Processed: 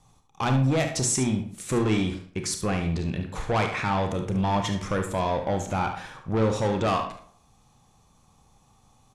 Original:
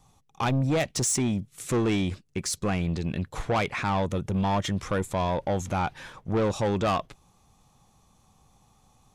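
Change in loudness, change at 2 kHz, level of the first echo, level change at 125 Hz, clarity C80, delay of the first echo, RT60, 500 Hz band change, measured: +1.0 dB, +1.5 dB, −10.0 dB, +1.5 dB, 11.5 dB, 72 ms, 0.55 s, +1.0 dB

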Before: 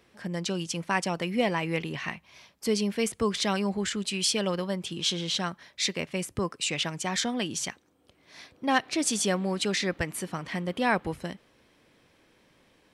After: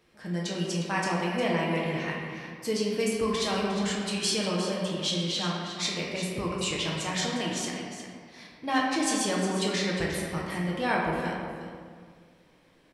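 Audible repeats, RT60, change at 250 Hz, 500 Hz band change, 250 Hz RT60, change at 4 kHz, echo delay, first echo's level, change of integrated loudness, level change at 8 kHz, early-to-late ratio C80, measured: 1, 1.9 s, +0.5 dB, +1.0 dB, 2.0 s, −0.5 dB, 357 ms, −10.0 dB, 0.0 dB, −2.0 dB, 1.0 dB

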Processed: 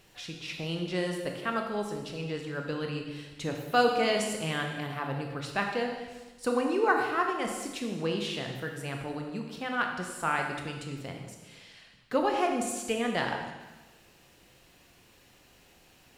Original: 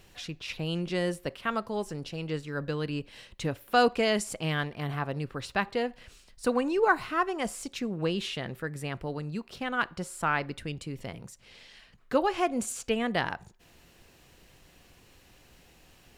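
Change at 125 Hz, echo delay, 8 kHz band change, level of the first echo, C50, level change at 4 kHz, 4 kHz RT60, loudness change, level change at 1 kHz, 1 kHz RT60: −2.5 dB, no echo audible, 0.0 dB, no echo audible, 4.0 dB, 0.0 dB, 1.2 s, −0.5 dB, 0.0 dB, 1.2 s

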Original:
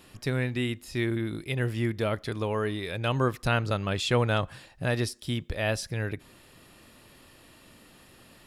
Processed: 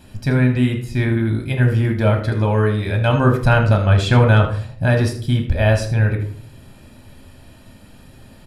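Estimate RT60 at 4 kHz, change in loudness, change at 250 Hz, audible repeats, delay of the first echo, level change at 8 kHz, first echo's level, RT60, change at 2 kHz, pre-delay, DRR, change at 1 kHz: 0.35 s, +12.0 dB, +11.5 dB, 1, 79 ms, can't be measured, −13.5 dB, 0.55 s, +9.5 dB, 3 ms, 3.0 dB, +10.0 dB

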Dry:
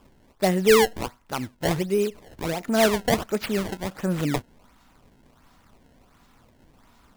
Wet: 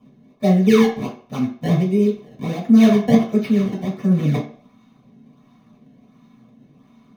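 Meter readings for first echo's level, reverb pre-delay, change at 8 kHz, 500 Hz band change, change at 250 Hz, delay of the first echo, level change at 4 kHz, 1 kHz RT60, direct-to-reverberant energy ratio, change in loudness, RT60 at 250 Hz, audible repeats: no echo audible, 3 ms, can't be measured, +1.5 dB, +12.0 dB, no echo audible, −3.5 dB, 0.50 s, −7.0 dB, +6.5 dB, 0.35 s, no echo audible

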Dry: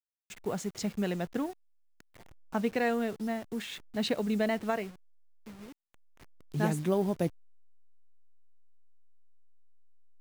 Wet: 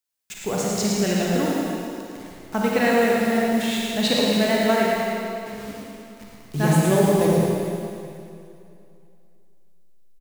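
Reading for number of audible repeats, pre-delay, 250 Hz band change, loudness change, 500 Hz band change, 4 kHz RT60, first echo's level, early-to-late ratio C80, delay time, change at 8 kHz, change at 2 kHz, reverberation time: 1, 32 ms, +11.0 dB, +11.0 dB, +12.0 dB, 2.5 s, −5.5 dB, −2.5 dB, 111 ms, +16.5 dB, +13.0 dB, 2.6 s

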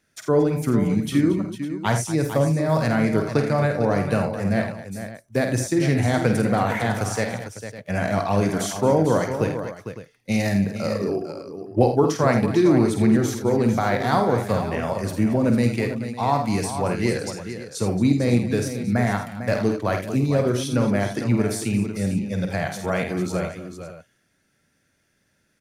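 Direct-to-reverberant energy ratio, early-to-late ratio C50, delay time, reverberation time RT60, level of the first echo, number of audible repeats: no reverb audible, no reverb audible, 50 ms, no reverb audible, −7.0 dB, 5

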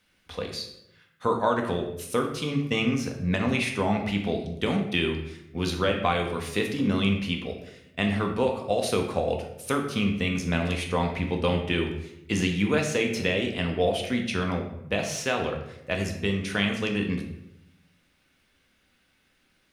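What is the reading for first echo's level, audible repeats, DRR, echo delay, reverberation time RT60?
no echo audible, no echo audible, 2.0 dB, no echo audible, 0.85 s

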